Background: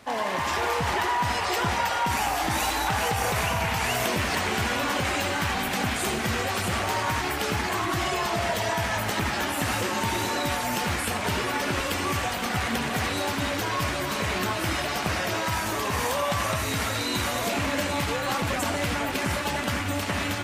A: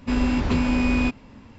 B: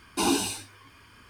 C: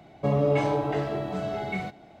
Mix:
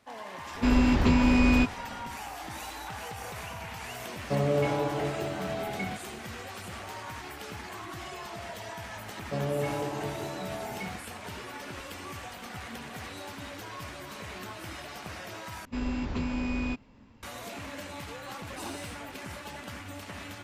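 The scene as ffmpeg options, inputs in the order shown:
-filter_complex "[1:a]asplit=2[s0][s1];[3:a]asplit=2[s2][s3];[0:a]volume=0.2,asplit=2[s4][s5];[s4]atrim=end=15.654[s6];[s1]atrim=end=1.58,asetpts=PTS-STARTPTS,volume=0.316[s7];[s5]atrim=start=17.226[s8];[s0]atrim=end=1.58,asetpts=PTS-STARTPTS,volume=0.944,afade=t=in:d=0.004:c=hsin,afade=t=out:st=1.576:d=0.004:c=hsin,adelay=550[s9];[s2]atrim=end=2.2,asetpts=PTS-STARTPTS,volume=0.668,afade=t=in:d=0.004:c=hsin,afade=t=out:st=2.196:d=0.004:c=hsin,adelay=4070[s10];[s3]atrim=end=2.2,asetpts=PTS-STARTPTS,volume=0.422,afade=t=in:d=0.004:c=hsin,afade=t=out:st=2.196:d=0.004:c=hsin,adelay=9080[s11];[2:a]atrim=end=1.29,asetpts=PTS-STARTPTS,volume=0.141,afade=t=in:d=0.004:c=hsin,afade=t=out:st=1.286:d=0.004:c=hsin,adelay=18390[s12];[s6][s7]acrossfade=d=0.004:c1=hsin:c2=hsin[s13];[s13][s8]acrossfade=d=0.004:c1=hsin:c2=hsin[s14];[s14][s9][s10][s11][s12]amix=inputs=5:normalize=0"

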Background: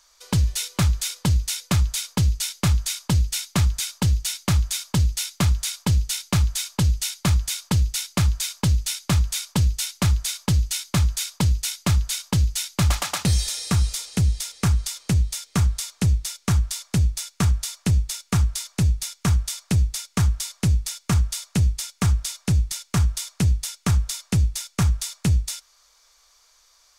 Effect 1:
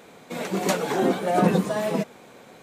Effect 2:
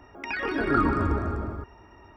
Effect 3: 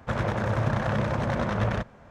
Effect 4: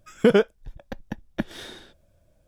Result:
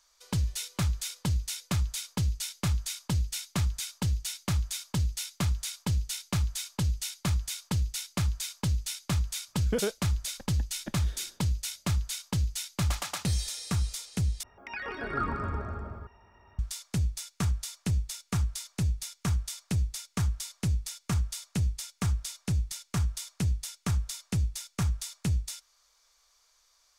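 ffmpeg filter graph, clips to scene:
-filter_complex "[0:a]volume=0.376[s0];[2:a]equalizer=f=310:t=o:w=0.45:g=-12.5[s1];[s0]asplit=2[s2][s3];[s2]atrim=end=14.434[s4];[s1]atrim=end=2.16,asetpts=PTS-STARTPTS,volume=0.473[s5];[s3]atrim=start=16.586[s6];[4:a]atrim=end=2.47,asetpts=PTS-STARTPTS,volume=0.237,afade=t=in:d=0.004:c=hsin,afade=t=out:st=2.466:d=0.004:c=hsin,adelay=9480[s7];[s4][s5]acrossfade=d=0.004:c1=hsin:c2=hsin[s8];[s8][s6]acrossfade=d=0.004:c1=hsin:c2=hsin[s9];[s9][s7]amix=inputs=2:normalize=0"

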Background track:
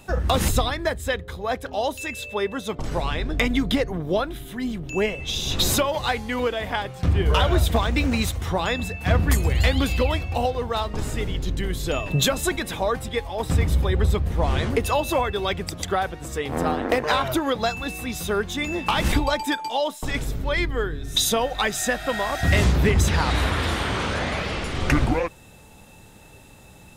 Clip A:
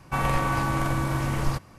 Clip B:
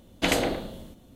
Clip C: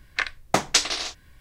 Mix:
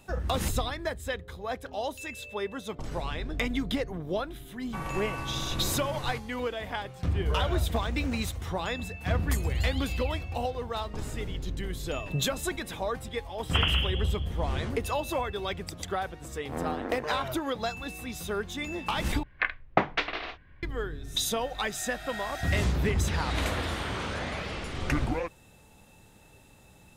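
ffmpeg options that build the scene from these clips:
-filter_complex "[2:a]asplit=2[s0][s1];[0:a]volume=0.398[s2];[s0]lowpass=f=2900:t=q:w=0.5098,lowpass=f=2900:t=q:w=0.6013,lowpass=f=2900:t=q:w=0.9,lowpass=f=2900:t=q:w=2.563,afreqshift=-3400[s3];[3:a]lowpass=f=2700:w=0.5412,lowpass=f=2700:w=1.3066[s4];[s2]asplit=2[s5][s6];[s5]atrim=end=19.234[s7];[s4]atrim=end=1.4,asetpts=PTS-STARTPTS,volume=0.841[s8];[s6]atrim=start=20.626[s9];[1:a]atrim=end=1.78,asetpts=PTS-STARTPTS,volume=0.282,afade=t=in:d=0.004:c=hsin,afade=t=out:st=1.776:d=0.004:c=hsin,adelay=203301S[s10];[s3]atrim=end=1.15,asetpts=PTS-STARTPTS,volume=0.708,afade=t=in:d=0.004:c=hsin,afade=t=out:st=1.146:d=0.004:c=hsin,adelay=13310[s11];[s1]atrim=end=1.15,asetpts=PTS-STARTPTS,volume=0.282,afade=t=in:d=0.004:c=hsin,afade=t=out:st=1.146:d=0.004:c=hsin,adelay=23140[s12];[s7][s8]acrossfade=d=0.004:c1=hsin:c2=hsin[s13];[s13][s9]acrossfade=d=0.004:c1=hsin:c2=hsin[s14];[s14][s10][s11][s12]amix=inputs=4:normalize=0"

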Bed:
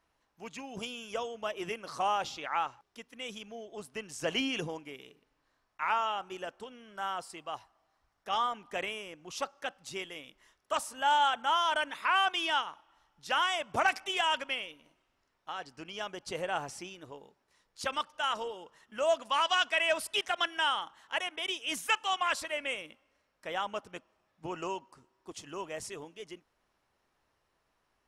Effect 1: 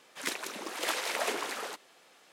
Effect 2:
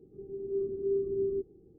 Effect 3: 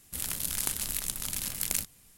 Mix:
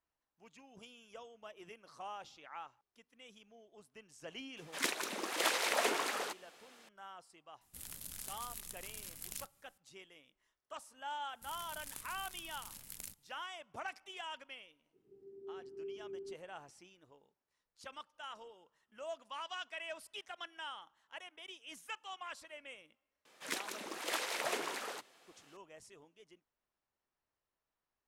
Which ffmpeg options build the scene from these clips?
-filter_complex "[1:a]asplit=2[s0][s1];[3:a]asplit=2[s2][s3];[0:a]volume=0.158[s4];[s2]asoftclip=type=tanh:threshold=0.355[s5];[2:a]highpass=f=310:p=1[s6];[s0]atrim=end=2.32,asetpts=PTS-STARTPTS,volume=0.944,afade=t=in:d=0.004:c=hsin,afade=t=out:st=2.316:d=0.004:c=hsin,adelay=201537S[s7];[s5]atrim=end=2.17,asetpts=PTS-STARTPTS,volume=0.188,afade=t=in:d=0.004:c=hsin,afade=t=out:st=2.166:d=0.004:c=hsin,adelay=7610[s8];[s3]atrim=end=2.17,asetpts=PTS-STARTPTS,volume=0.133,afade=t=in:d=0.004:c=hsin,afade=t=out:st=2.166:d=0.004:c=hsin,adelay=11290[s9];[s6]atrim=end=1.78,asetpts=PTS-STARTPTS,volume=0.211,afade=t=in:d=0.004:c=hsin,afade=t=out:st=1.776:d=0.004:c=hsin,adelay=14930[s10];[s1]atrim=end=2.32,asetpts=PTS-STARTPTS,volume=0.562,afade=t=in:d=0.004:c=hsin,afade=t=out:st=2.316:d=0.004:c=hsin,adelay=23250[s11];[s4][s7][s8][s9][s10][s11]amix=inputs=6:normalize=0"

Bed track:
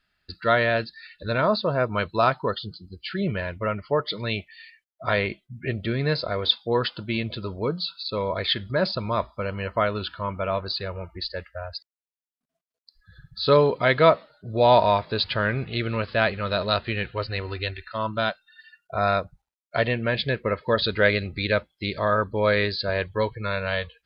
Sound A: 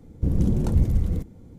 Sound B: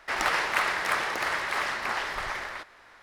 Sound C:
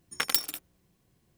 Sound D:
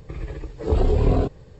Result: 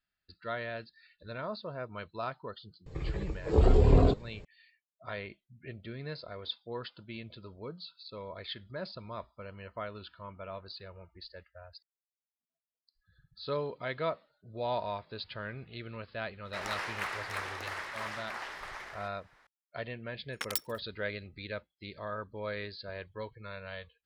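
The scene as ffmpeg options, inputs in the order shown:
-filter_complex "[0:a]volume=0.15[s0];[2:a]flanger=delay=3.9:depth=9.3:regen=-70:speed=1.2:shape=sinusoidal[s1];[3:a]afwtdn=0.0126[s2];[4:a]atrim=end=1.59,asetpts=PTS-STARTPTS,volume=0.708,afade=t=in:d=0.004:c=hsin,afade=t=out:st=1.586:d=0.004:c=hsin,adelay=2860[s3];[s1]atrim=end=3.02,asetpts=PTS-STARTPTS,volume=0.473,afade=t=in:d=0.004:c=hsin,afade=t=out:st=3.016:d=0.004:c=hsin,adelay=16450[s4];[s2]atrim=end=1.37,asetpts=PTS-STARTPTS,volume=0.398,afade=t=in:d=0.004:c=hsin,afade=t=out:st=1.366:d=0.004:c=hsin,adelay=20210[s5];[s0][s3][s4][s5]amix=inputs=4:normalize=0"

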